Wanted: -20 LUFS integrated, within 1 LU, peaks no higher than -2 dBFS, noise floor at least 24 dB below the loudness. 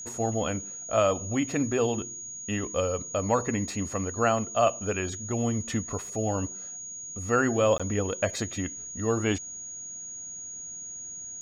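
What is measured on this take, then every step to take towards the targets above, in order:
dropouts 1; longest dropout 16 ms; steady tone 6.7 kHz; tone level -37 dBFS; loudness -29.0 LUFS; peak level -11.5 dBFS; loudness target -20.0 LUFS
-> interpolate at 7.78 s, 16 ms; band-stop 6.7 kHz, Q 30; trim +9 dB

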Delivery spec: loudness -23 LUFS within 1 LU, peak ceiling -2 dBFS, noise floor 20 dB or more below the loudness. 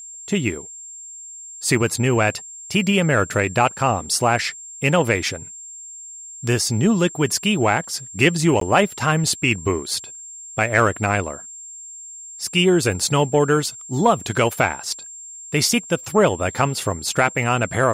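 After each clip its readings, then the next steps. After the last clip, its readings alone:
dropouts 1; longest dropout 13 ms; steady tone 7.4 kHz; tone level -35 dBFS; loudness -20.0 LUFS; peak level -2.0 dBFS; loudness target -23.0 LUFS
-> interpolate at 8.60 s, 13 ms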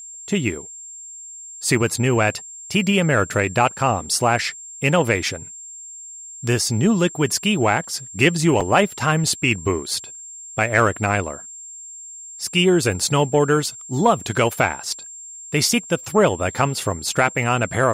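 dropouts 0; steady tone 7.4 kHz; tone level -35 dBFS
-> band-stop 7.4 kHz, Q 30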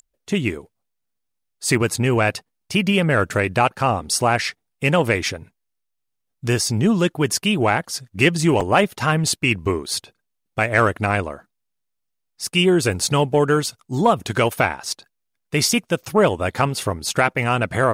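steady tone not found; loudness -20.0 LUFS; peak level -2.0 dBFS; loudness target -23.0 LUFS
-> trim -3 dB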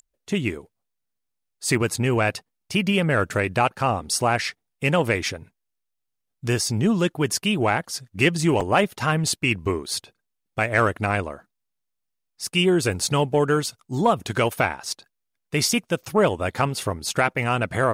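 loudness -23.0 LUFS; peak level -5.0 dBFS; noise floor -79 dBFS

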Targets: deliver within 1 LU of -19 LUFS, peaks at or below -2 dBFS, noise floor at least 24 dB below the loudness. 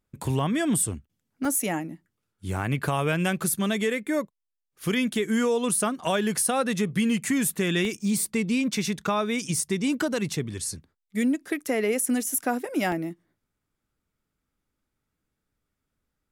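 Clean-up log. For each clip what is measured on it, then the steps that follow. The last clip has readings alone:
dropouts 6; longest dropout 1.6 ms; loudness -26.0 LUFS; peak level -12.0 dBFS; loudness target -19.0 LUFS
-> interpolate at 0.26/1.45/7.85/11.66/12.30/12.92 s, 1.6 ms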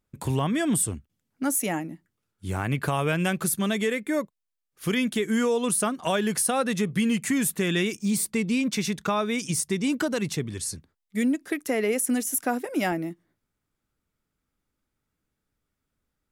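dropouts 0; loudness -26.0 LUFS; peak level -12.0 dBFS; loudness target -19.0 LUFS
-> trim +7 dB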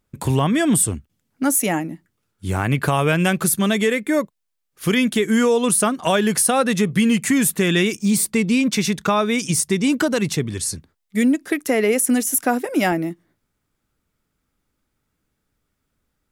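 loudness -19.0 LUFS; peak level -5.0 dBFS; noise floor -76 dBFS

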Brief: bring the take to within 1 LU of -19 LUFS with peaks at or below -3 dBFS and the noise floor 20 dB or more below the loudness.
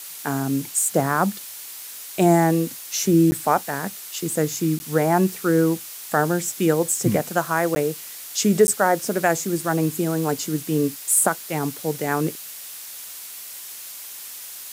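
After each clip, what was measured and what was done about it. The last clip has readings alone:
dropouts 4; longest dropout 10 ms; noise floor -37 dBFS; noise floor target -42 dBFS; loudness -21.5 LUFS; peak level -4.5 dBFS; loudness target -19.0 LUFS
-> interpolate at 3.31/4.79/7.75/8.67 s, 10 ms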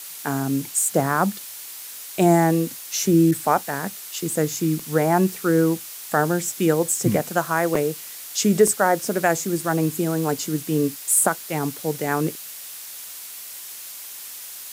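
dropouts 0; noise floor -37 dBFS; noise floor target -42 dBFS
-> noise print and reduce 6 dB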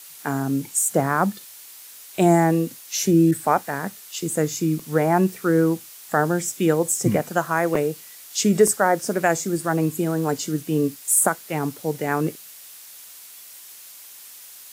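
noise floor -43 dBFS; loudness -21.5 LUFS; peak level -4.5 dBFS; loudness target -19.0 LUFS
-> trim +2.5 dB; peak limiter -3 dBFS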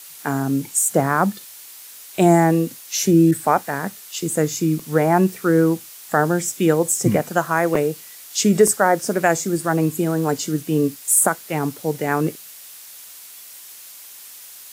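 loudness -19.5 LUFS; peak level -3.0 dBFS; noise floor -41 dBFS

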